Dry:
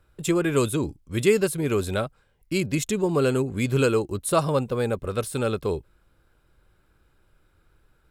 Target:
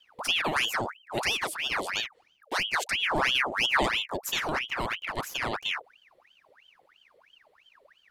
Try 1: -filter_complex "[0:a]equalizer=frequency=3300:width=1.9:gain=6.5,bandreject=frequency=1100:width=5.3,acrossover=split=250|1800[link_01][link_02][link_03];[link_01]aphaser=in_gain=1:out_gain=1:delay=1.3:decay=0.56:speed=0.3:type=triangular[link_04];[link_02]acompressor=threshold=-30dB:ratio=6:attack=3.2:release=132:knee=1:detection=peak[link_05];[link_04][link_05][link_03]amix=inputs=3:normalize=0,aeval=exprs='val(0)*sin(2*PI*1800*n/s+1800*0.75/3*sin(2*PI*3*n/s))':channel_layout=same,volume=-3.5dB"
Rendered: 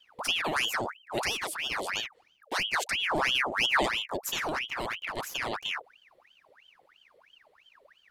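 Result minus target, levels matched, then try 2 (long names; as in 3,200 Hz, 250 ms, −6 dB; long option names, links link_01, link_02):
downward compressor: peak gain reduction +7.5 dB
-filter_complex "[0:a]equalizer=frequency=3300:width=1.9:gain=6.5,bandreject=frequency=1100:width=5.3,acrossover=split=250|1800[link_01][link_02][link_03];[link_01]aphaser=in_gain=1:out_gain=1:delay=1.3:decay=0.56:speed=0.3:type=triangular[link_04];[link_02]acompressor=threshold=-21dB:ratio=6:attack=3.2:release=132:knee=1:detection=peak[link_05];[link_04][link_05][link_03]amix=inputs=3:normalize=0,aeval=exprs='val(0)*sin(2*PI*1800*n/s+1800*0.75/3*sin(2*PI*3*n/s))':channel_layout=same,volume=-3.5dB"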